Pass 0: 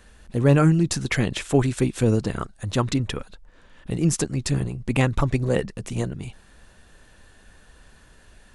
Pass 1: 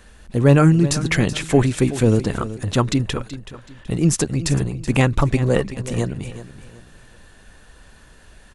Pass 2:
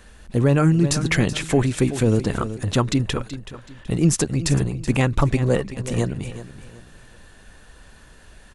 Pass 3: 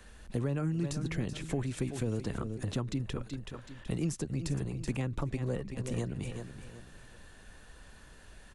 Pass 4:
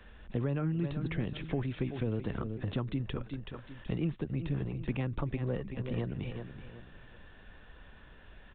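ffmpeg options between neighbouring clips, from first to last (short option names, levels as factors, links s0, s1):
-af "aecho=1:1:377|754|1131:0.2|0.0638|0.0204,volume=1.58"
-af "alimiter=limit=0.447:level=0:latency=1:release=309"
-filter_complex "[0:a]acrossover=split=200|510[s0][s1][s2];[s0]acompressor=threshold=0.0355:ratio=4[s3];[s1]acompressor=threshold=0.0251:ratio=4[s4];[s2]acompressor=threshold=0.0126:ratio=4[s5];[s3][s4][s5]amix=inputs=3:normalize=0,volume=0.501"
-af "aresample=8000,aresample=44100"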